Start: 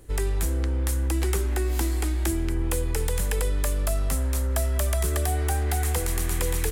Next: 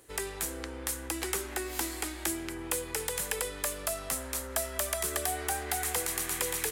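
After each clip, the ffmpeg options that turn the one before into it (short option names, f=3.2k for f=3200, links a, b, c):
-af "highpass=f=730:p=1"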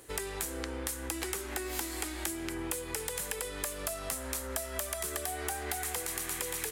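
-af "acompressor=threshold=-37dB:ratio=6,volume=4.5dB"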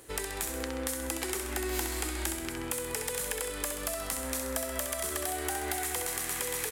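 -af "aecho=1:1:65|130|195|260|325|390|455|520:0.473|0.274|0.159|0.0923|0.0535|0.0311|0.018|0.0104,volume=1dB"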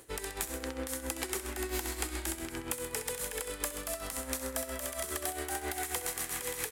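-af "tremolo=f=7.4:d=0.65"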